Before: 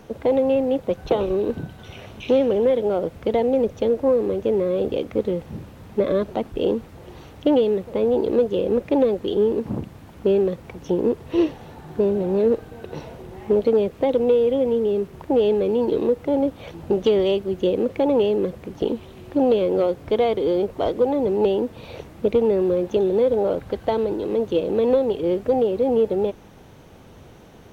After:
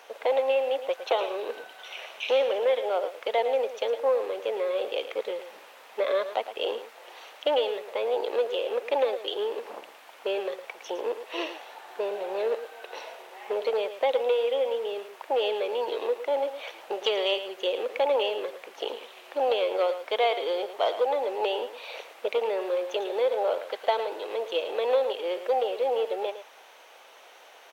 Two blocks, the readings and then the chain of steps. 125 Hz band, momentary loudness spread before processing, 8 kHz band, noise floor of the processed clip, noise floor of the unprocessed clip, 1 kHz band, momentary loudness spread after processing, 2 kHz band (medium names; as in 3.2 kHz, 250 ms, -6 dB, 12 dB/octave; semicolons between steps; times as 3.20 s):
under -35 dB, 10 LU, no reading, -51 dBFS, -45 dBFS, +0.5 dB, 13 LU, +4.5 dB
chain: high-pass 580 Hz 24 dB/octave; peaking EQ 2.6 kHz +5 dB 1.3 oct; delay 110 ms -11.5 dB